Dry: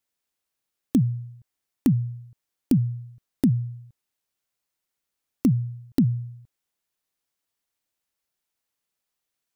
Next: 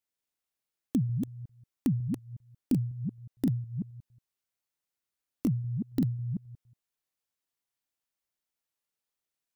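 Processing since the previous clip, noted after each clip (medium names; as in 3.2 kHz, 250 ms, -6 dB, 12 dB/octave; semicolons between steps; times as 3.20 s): chunks repeated in reverse 182 ms, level -5 dB; trim -7.5 dB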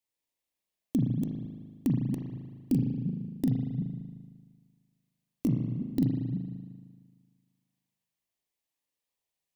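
peaking EQ 1.4 kHz -14 dB 0.28 oct; de-hum 212 Hz, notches 28; reverberation RT60 1.6 s, pre-delay 38 ms, DRR 1 dB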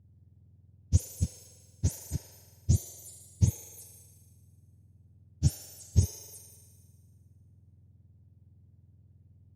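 spectrum inverted on a logarithmic axis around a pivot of 1.3 kHz; RIAA curve playback; trim +4 dB; Opus 64 kbps 48 kHz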